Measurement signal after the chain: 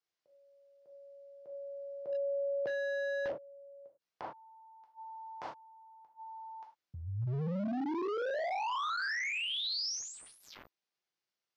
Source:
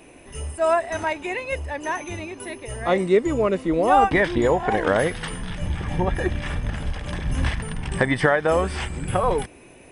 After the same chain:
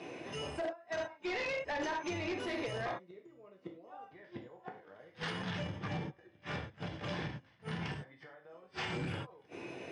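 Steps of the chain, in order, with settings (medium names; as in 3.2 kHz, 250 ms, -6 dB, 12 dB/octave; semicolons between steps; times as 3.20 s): inverted gate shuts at -16 dBFS, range -39 dB; gated-style reverb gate 130 ms falling, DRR 0 dB; peak limiter -26.5 dBFS; high-pass 120 Hz 24 dB/octave; wavefolder -30.5 dBFS; Chebyshev low-pass 5.4 kHz, order 3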